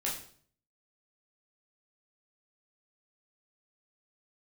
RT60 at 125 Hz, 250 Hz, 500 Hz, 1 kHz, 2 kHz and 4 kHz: 0.75, 0.65, 0.55, 0.50, 0.45, 0.45 seconds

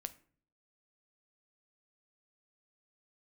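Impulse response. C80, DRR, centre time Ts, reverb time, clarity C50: 22.0 dB, 11.0 dB, 3 ms, 0.50 s, 17.5 dB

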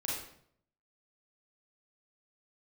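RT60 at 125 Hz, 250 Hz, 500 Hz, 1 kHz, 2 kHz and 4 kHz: 0.85, 0.70, 0.70, 0.60, 0.55, 0.50 seconds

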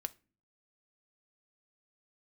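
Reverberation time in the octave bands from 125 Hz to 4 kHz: 0.70, 0.65, 0.40, 0.30, 0.35, 0.25 seconds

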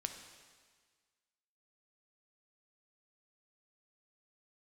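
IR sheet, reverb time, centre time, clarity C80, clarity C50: 1.6 s, 28 ms, 8.5 dB, 7.0 dB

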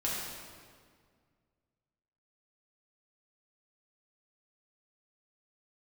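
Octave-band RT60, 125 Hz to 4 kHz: 2.5, 2.3, 2.0, 1.8, 1.6, 1.4 seconds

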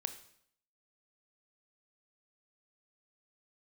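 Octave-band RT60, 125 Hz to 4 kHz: 0.70, 0.70, 0.70, 0.65, 0.65, 0.65 seconds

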